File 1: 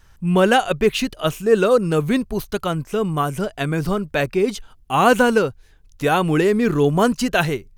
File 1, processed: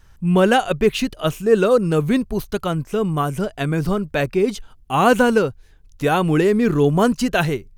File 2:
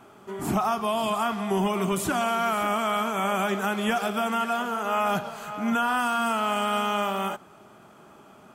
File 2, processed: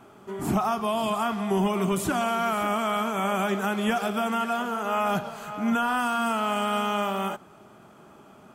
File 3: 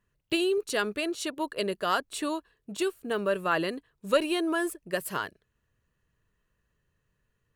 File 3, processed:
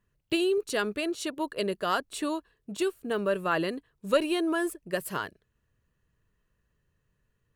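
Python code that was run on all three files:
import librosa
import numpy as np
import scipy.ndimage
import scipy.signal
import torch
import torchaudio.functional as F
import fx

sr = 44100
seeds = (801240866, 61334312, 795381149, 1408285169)

y = fx.low_shelf(x, sr, hz=470.0, db=3.5)
y = F.gain(torch.from_numpy(y), -1.5).numpy()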